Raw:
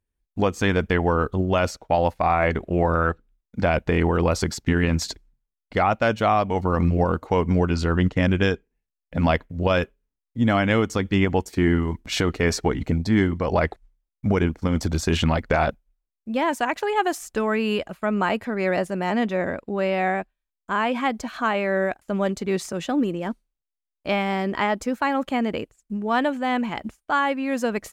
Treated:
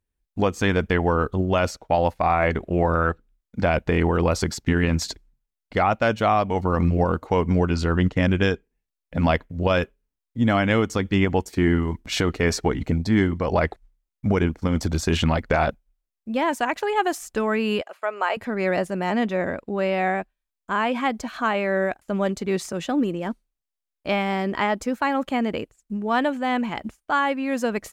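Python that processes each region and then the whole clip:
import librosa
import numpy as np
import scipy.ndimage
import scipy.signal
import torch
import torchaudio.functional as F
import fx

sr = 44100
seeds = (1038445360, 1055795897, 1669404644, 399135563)

y = fx.chain(x, sr, fx.highpass(hz=470.0, slope=24),
    fx.high_shelf(hz=8300.0, db=-8.0),
    fx.notch(hz=3700.0, q=21.0), at=(17.81, 18.37))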